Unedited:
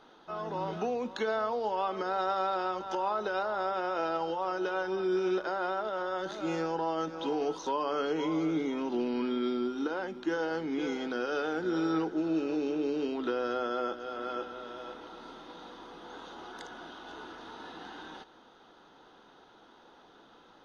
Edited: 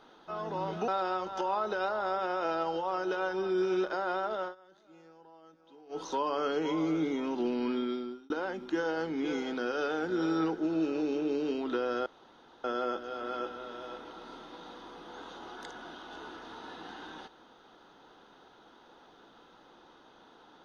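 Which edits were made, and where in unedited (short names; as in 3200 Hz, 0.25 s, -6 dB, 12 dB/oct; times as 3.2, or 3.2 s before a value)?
0.88–2.42 cut
5.96–7.56 dip -24 dB, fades 0.13 s
9.3–9.84 fade out
13.6 insert room tone 0.58 s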